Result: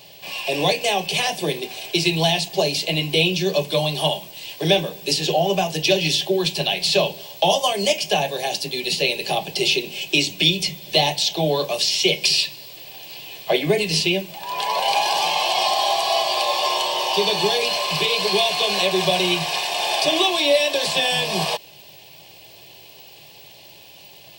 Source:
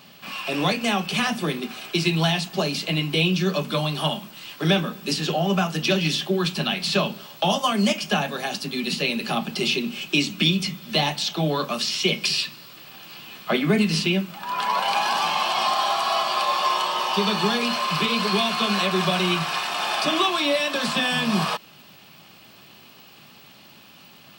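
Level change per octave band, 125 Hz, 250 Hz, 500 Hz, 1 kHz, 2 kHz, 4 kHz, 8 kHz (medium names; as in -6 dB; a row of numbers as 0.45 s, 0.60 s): -2.0 dB, -3.0 dB, +5.5 dB, +1.0 dB, +1.5 dB, +4.5 dB, +6.0 dB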